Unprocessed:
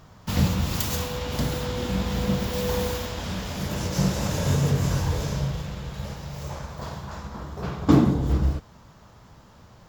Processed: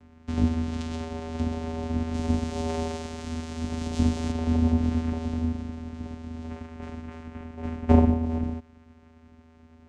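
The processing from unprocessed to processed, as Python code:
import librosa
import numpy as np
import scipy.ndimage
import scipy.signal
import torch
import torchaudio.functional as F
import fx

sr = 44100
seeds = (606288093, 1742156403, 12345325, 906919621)

y = fx.vocoder(x, sr, bands=4, carrier='square', carrier_hz=80.9)
y = fx.high_shelf(y, sr, hz=4100.0, db=11.0, at=(2.14, 4.32))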